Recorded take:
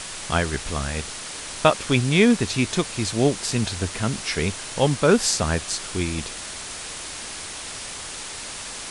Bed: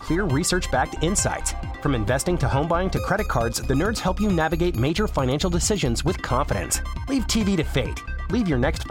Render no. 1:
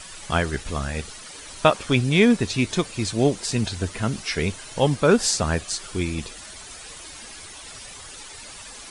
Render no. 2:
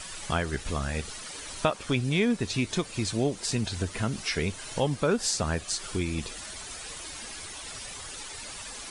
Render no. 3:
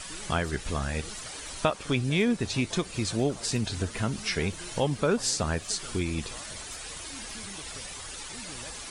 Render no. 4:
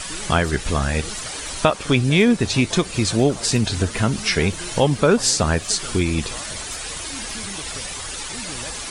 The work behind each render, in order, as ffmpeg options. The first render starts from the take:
ffmpeg -i in.wav -af "afftdn=noise_reduction=11:noise_floor=-35" out.wav
ffmpeg -i in.wav -af "acompressor=threshold=-28dB:ratio=2" out.wav
ffmpeg -i in.wav -i bed.wav -filter_complex "[1:a]volume=-26dB[link_01];[0:a][link_01]amix=inputs=2:normalize=0" out.wav
ffmpeg -i in.wav -af "volume=9.5dB,alimiter=limit=-3dB:level=0:latency=1" out.wav

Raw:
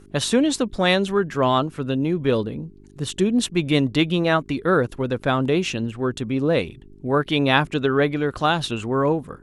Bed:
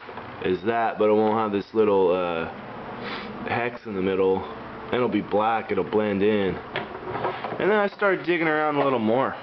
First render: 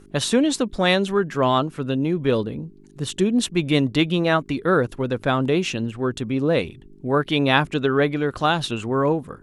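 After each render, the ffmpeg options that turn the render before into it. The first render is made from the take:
ffmpeg -i in.wav -af "bandreject=frequency=50:width_type=h:width=4,bandreject=frequency=100:width_type=h:width=4" out.wav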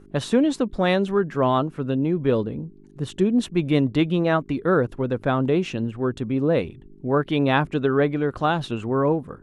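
ffmpeg -i in.wav -af "highshelf=frequency=2400:gain=-12" out.wav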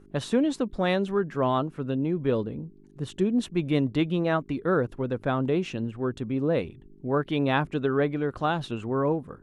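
ffmpeg -i in.wav -af "volume=-4.5dB" out.wav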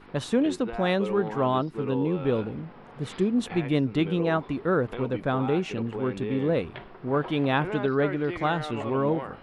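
ffmpeg -i in.wav -i bed.wav -filter_complex "[1:a]volume=-13dB[link_01];[0:a][link_01]amix=inputs=2:normalize=0" out.wav

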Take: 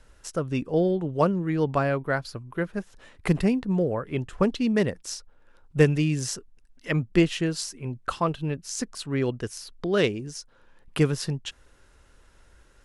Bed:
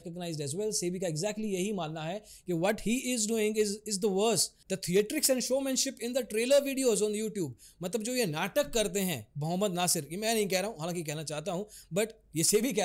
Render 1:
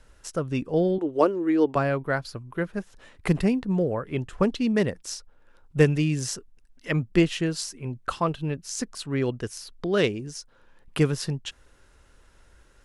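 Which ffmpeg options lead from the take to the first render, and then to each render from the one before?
ffmpeg -i in.wav -filter_complex "[0:a]asettb=1/sr,asplit=3[link_01][link_02][link_03];[link_01]atrim=end=0.984[link_04];[link_02]atrim=start=0.98:end=1.76,asetpts=PTS-STARTPTS,afade=type=in:duration=0.004:curve=qsin,afade=type=out:start_time=0.776:duration=0.004:curve=qsin,lowshelf=frequency=240:width_type=q:width=3:gain=-9.5[link_05];[link_03]atrim=start=1.756[link_06];[link_04][link_05]acrossfade=duration=0.004:curve1=hsin:curve2=qsin[link_07];[link_07][link_06]acrossfade=duration=0.004:curve1=qsin:curve2=hsin" out.wav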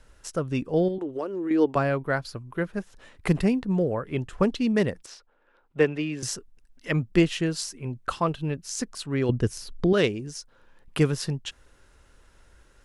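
ffmpeg -i in.wav -filter_complex "[0:a]asettb=1/sr,asplit=3[link_01][link_02][link_03];[link_01]atrim=end=0.884[link_04];[link_02]atrim=start=0.88:end=1.51,asetpts=PTS-STARTPTS,afade=type=in:duration=0.004:curve=qsin,afade=type=out:start_time=0.626:duration=0.004:curve=qsin,acompressor=threshold=-27dB:ratio=5:attack=3.2:release=140:knee=1:detection=peak[link_05];[link_03]atrim=start=1.506[link_06];[link_04][link_05]acrossfade=duration=0.004:curve1=hsin:curve2=qsin[link_07];[link_07][link_06]acrossfade=duration=0.004:curve1=qsin:curve2=hsin,asettb=1/sr,asplit=3[link_08][link_09][link_10];[link_08]atrim=end=5.064[link_11];[link_09]atrim=start=5.06:end=6.23,asetpts=PTS-STARTPTS,afade=type=in:duration=0.004:curve=qsin,afade=type=out:start_time=1.166:duration=0.004:curve=qsin,acrossover=split=260 3800:gain=0.178 1 0.126[link_12][link_13][link_14];[link_12][link_13][link_14]amix=inputs=3:normalize=0[link_15];[link_10]atrim=start=6.226[link_16];[link_11][link_15]acrossfade=duration=0.004:curve1=hsin:curve2=qsin[link_17];[link_17][link_16]acrossfade=duration=0.004:curve1=qsin:curve2=hsin,asettb=1/sr,asplit=3[link_18][link_19][link_20];[link_18]atrim=end=9.294[link_21];[link_19]atrim=start=9.29:end=9.93,asetpts=PTS-STARTPTS,afade=type=in:duration=0.004:curve=qsin,afade=type=out:start_time=0.636:duration=0.004:curve=qsin,lowshelf=frequency=380:gain=11.5[link_22];[link_20]atrim=start=9.926[link_23];[link_21][link_22]acrossfade=duration=0.004:curve1=hsin:curve2=qsin[link_24];[link_24][link_23]acrossfade=duration=0.004:curve1=qsin:curve2=hsin" out.wav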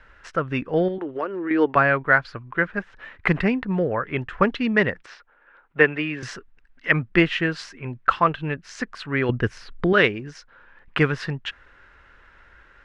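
ffmpeg -i in.wav -af "lowpass=3300,equalizer=frequency=1700:width_type=o:width=1.7:gain=14" out.wav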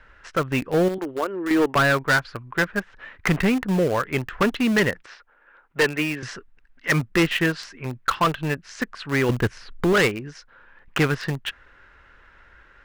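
ffmpeg -i in.wav -filter_complex "[0:a]asplit=2[link_01][link_02];[link_02]acrusher=bits=3:mix=0:aa=0.000001,volume=-11dB[link_03];[link_01][link_03]amix=inputs=2:normalize=0,asoftclip=type=hard:threshold=-14.5dB" out.wav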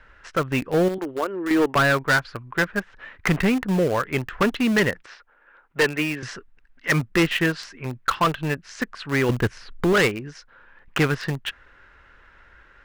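ffmpeg -i in.wav -af anull out.wav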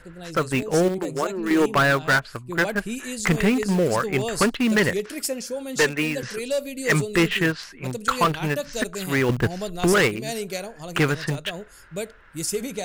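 ffmpeg -i in.wav -i bed.wav -filter_complex "[1:a]volume=-1dB[link_01];[0:a][link_01]amix=inputs=2:normalize=0" out.wav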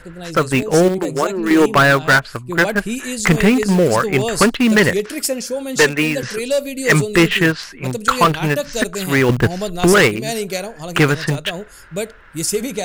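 ffmpeg -i in.wav -af "volume=7dB" out.wav

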